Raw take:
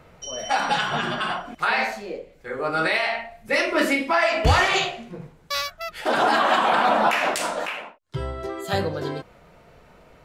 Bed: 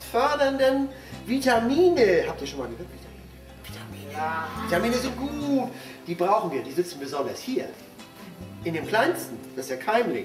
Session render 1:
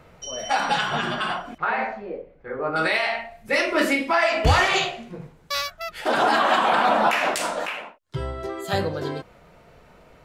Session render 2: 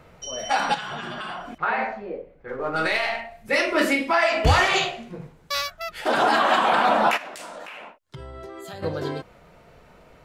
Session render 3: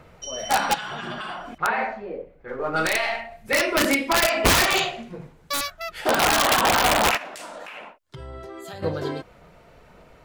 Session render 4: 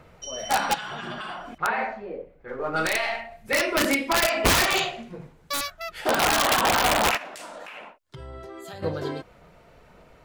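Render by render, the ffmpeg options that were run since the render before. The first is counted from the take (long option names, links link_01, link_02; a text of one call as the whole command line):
ffmpeg -i in.wav -filter_complex "[0:a]asettb=1/sr,asplit=3[link_01][link_02][link_03];[link_01]atrim=end=1.584[link_04];[link_02]atrim=start=1.58:end=2.76,asetpts=PTS-STARTPTS,afade=type=in:duration=0.004:curve=qsin,afade=type=out:start_time=1.176:duration=0.004:curve=qsin,lowpass=1600[link_05];[link_03]atrim=start=2.756[link_06];[link_04][link_05]acrossfade=duration=0.004:curve1=hsin:curve2=qsin[link_07];[link_07][link_06]acrossfade=duration=0.004:curve1=qsin:curve2=hsin" out.wav
ffmpeg -i in.wav -filter_complex "[0:a]asettb=1/sr,asplit=3[link_01][link_02][link_03];[link_01]atrim=end=0.744[link_04];[link_02]atrim=start=0.74:end=1.56,asetpts=PTS-STARTPTS,afade=type=in:duration=0.004:curve=qsin,afade=type=out:start_time=0.816:duration=0.004:curve=qsin,acompressor=threshold=-29dB:ratio=6:attack=3.2:release=140:knee=1:detection=peak[link_05];[link_03]atrim=start=1.556[link_06];[link_04][link_05]acrossfade=duration=0.004:curve1=hsin:curve2=qsin[link_07];[link_07][link_06]acrossfade=duration=0.004:curve1=qsin:curve2=hsin,asettb=1/sr,asplit=3[link_08][link_09][link_10];[link_08]atrim=end=2.484[link_11];[link_09]atrim=start=2.48:end=3.21,asetpts=PTS-STARTPTS,afade=type=in:duration=0.004:curve=qsin,afade=type=out:start_time=0.726:duration=0.004:curve=qsin,aeval=exprs='if(lt(val(0),0),0.708*val(0),val(0))':channel_layout=same[link_12];[link_10]atrim=start=3.206[link_13];[link_11][link_12]acrossfade=duration=0.004:curve1=hsin:curve2=qsin[link_14];[link_14][link_13]acrossfade=duration=0.004:curve1=qsin:curve2=hsin,asplit=3[link_15][link_16][link_17];[link_15]afade=type=out:start_time=7.16:duration=0.02[link_18];[link_16]acompressor=threshold=-35dB:ratio=6:attack=3.2:release=140:knee=1:detection=peak,afade=type=in:start_time=7.16:duration=0.02,afade=type=out:start_time=8.82:duration=0.02[link_19];[link_17]afade=type=in:start_time=8.82:duration=0.02[link_20];[link_18][link_19][link_20]amix=inputs=3:normalize=0" out.wav
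ffmpeg -i in.wav -af "aeval=exprs='(mod(3.98*val(0)+1,2)-1)/3.98':channel_layout=same,aphaser=in_gain=1:out_gain=1:delay=3.5:decay=0.21:speed=1.8:type=sinusoidal" out.wav
ffmpeg -i in.wav -af "volume=-2dB" out.wav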